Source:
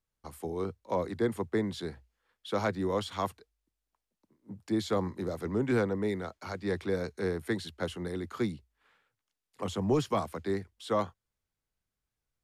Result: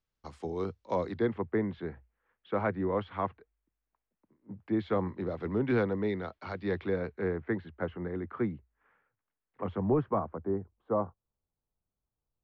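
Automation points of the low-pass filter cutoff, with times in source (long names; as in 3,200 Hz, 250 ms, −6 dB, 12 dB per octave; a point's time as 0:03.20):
low-pass filter 24 dB per octave
0:00.99 6,000 Hz
0:01.44 2,300 Hz
0:04.53 2,300 Hz
0:05.70 3,900 Hz
0:06.62 3,900 Hz
0:07.50 2,000 Hz
0:09.74 2,000 Hz
0:10.47 1,100 Hz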